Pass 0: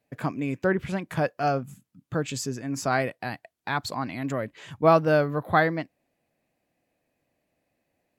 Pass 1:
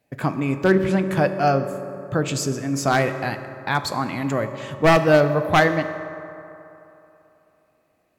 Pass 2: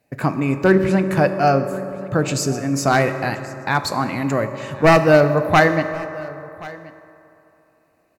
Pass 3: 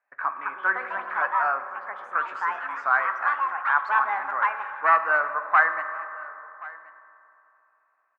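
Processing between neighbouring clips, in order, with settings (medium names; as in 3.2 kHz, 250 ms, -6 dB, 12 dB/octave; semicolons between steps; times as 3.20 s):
one-sided wavefolder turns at -14.5 dBFS; reverberation RT60 3.1 s, pre-delay 3 ms, DRR 8 dB; trim +5.5 dB
in parallel at -7.5 dB: one-sided clip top -12 dBFS; on the sum: band-stop 3.3 kHz, Q 6.4; delay 1077 ms -20.5 dB
ever faster or slower copies 272 ms, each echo +5 st, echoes 2, each echo -6 dB; Butterworth band-pass 1.3 kHz, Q 1.9; trim +1.5 dB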